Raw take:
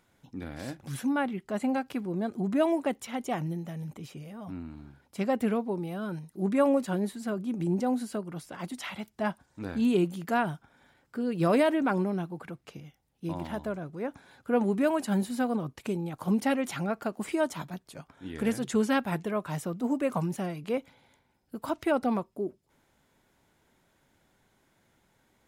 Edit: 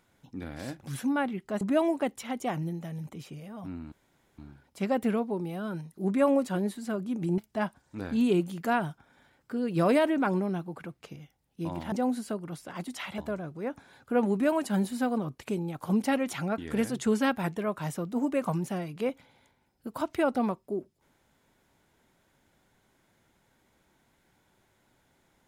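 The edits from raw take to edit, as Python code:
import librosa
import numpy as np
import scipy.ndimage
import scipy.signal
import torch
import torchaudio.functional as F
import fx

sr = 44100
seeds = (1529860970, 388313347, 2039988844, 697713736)

y = fx.edit(x, sr, fx.cut(start_s=1.61, length_s=0.84),
    fx.insert_room_tone(at_s=4.76, length_s=0.46),
    fx.move(start_s=7.76, length_s=1.26, to_s=13.56),
    fx.cut(start_s=16.96, length_s=1.3), tone=tone)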